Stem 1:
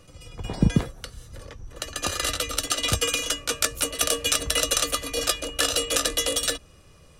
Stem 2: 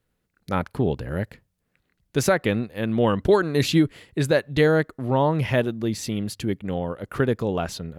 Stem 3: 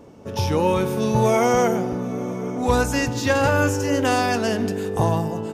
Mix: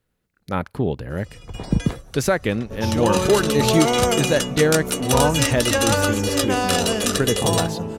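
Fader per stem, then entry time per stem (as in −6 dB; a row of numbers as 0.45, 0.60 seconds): 0.0, +0.5, −2.0 decibels; 1.10, 0.00, 2.45 seconds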